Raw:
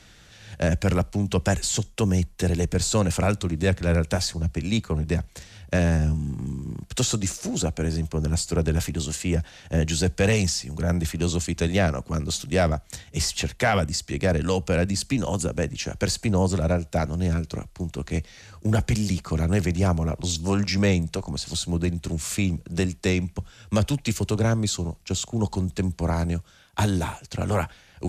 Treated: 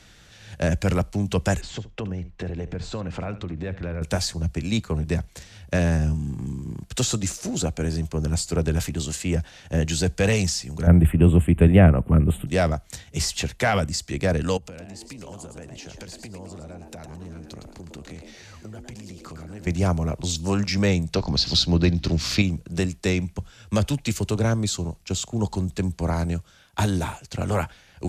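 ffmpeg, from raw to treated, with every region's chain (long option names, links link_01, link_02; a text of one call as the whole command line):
ffmpeg -i in.wav -filter_complex "[0:a]asettb=1/sr,asplit=3[link_01][link_02][link_03];[link_01]atrim=end=1.614[link_04];[link_02]atrim=start=1.61:end=4.02,asetpts=PTS-STARTPTS,afade=type=in:duration=0.004:curve=qsin,afade=type=out:start_time=2.406:duration=0.004:curve=qsin,lowpass=2600,acompressor=threshold=-26dB:ratio=10:attack=3.2:release=140:knee=1:detection=peak,aecho=1:1:73:0.168,atrim=end_sample=106281[link_05];[link_03]atrim=start=4.016[link_06];[link_04][link_05]acrossfade=duration=0.004:curve1=hsin:curve2=qsin[link_07];[link_07][link_06]acrossfade=duration=0.004:curve1=qsin:curve2=hsin,asettb=1/sr,asplit=3[link_08][link_09][link_10];[link_08]atrim=end=10.874[link_11];[link_09]atrim=start=10.87:end=12.47,asetpts=PTS-STARTPTS,afade=type=in:duration=0.004:curve=qsin,afade=type=out:start_time=1.596:duration=0.004:curve=qsin,lowshelf=frequency=470:gain=11,deesser=0.35,asuperstop=centerf=5300:order=8:qfactor=0.93[link_12];[link_10]atrim=start=12.466[link_13];[link_11][link_12]acrossfade=duration=0.004:curve1=hsin:curve2=qsin[link_14];[link_14][link_13]acrossfade=duration=0.004:curve1=qsin:curve2=hsin,asettb=1/sr,asplit=3[link_15][link_16][link_17];[link_15]atrim=end=14.574[link_18];[link_16]atrim=start=14.57:end=19.67,asetpts=PTS-STARTPTS,afade=type=in:duration=0.004:curve=qsin,afade=type=out:start_time=5.096:duration=0.004:curve=qsin,acompressor=threshold=-36dB:ratio=16:attack=3.2:release=140:knee=1:detection=peak,asplit=5[link_19][link_20][link_21][link_22][link_23];[link_20]adelay=111,afreqshift=140,volume=-7dB[link_24];[link_21]adelay=222,afreqshift=280,volume=-16.1dB[link_25];[link_22]adelay=333,afreqshift=420,volume=-25.2dB[link_26];[link_23]adelay=444,afreqshift=560,volume=-34.4dB[link_27];[link_19][link_24][link_25][link_26][link_27]amix=inputs=5:normalize=0,atrim=end_sample=224910[link_28];[link_17]atrim=start=19.666[link_29];[link_18][link_28]acrossfade=duration=0.004:curve1=hsin:curve2=qsin[link_30];[link_30][link_29]acrossfade=duration=0.004:curve1=qsin:curve2=hsin,asettb=1/sr,asplit=3[link_31][link_32][link_33];[link_31]atrim=end=21.144[link_34];[link_32]atrim=start=21.14:end=22.42,asetpts=PTS-STARTPTS,afade=type=in:duration=0.004:curve=qsin,afade=type=out:start_time=1.276:duration=0.004:curve=qsin,highshelf=frequency=6400:width_type=q:width=3:gain=-10,acontrast=39,aeval=exprs='val(0)+0.0126*(sin(2*PI*60*n/s)+sin(2*PI*2*60*n/s)/2+sin(2*PI*3*60*n/s)/3+sin(2*PI*4*60*n/s)/4+sin(2*PI*5*60*n/s)/5)':channel_layout=same[link_35];[link_33]atrim=start=22.416[link_36];[link_34][link_35]acrossfade=duration=0.004:curve1=hsin:curve2=qsin[link_37];[link_37][link_36]acrossfade=duration=0.004:curve1=qsin:curve2=hsin" out.wav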